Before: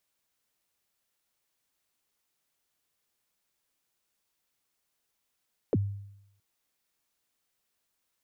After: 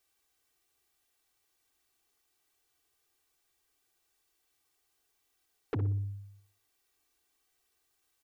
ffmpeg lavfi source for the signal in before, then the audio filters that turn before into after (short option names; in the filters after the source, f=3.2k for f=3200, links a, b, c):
-f lavfi -i "aevalsrc='0.1*pow(10,-3*t/0.81)*sin(2*PI*(560*0.037/log(100/560)*(exp(log(100/560)*min(t,0.037)/0.037)-1)+100*max(t-0.037,0)))':d=0.67:s=44100"
-filter_complex "[0:a]aecho=1:1:2.6:0.95,asoftclip=type=tanh:threshold=-29dB,asplit=2[a][b];[b]adelay=60,lowpass=f=1.1k:p=1,volume=-7.5dB,asplit=2[c][d];[d]adelay=60,lowpass=f=1.1k:p=1,volume=0.46,asplit=2[e][f];[f]adelay=60,lowpass=f=1.1k:p=1,volume=0.46,asplit=2[g][h];[h]adelay=60,lowpass=f=1.1k:p=1,volume=0.46,asplit=2[i][j];[j]adelay=60,lowpass=f=1.1k:p=1,volume=0.46[k];[c][e][g][i][k]amix=inputs=5:normalize=0[l];[a][l]amix=inputs=2:normalize=0"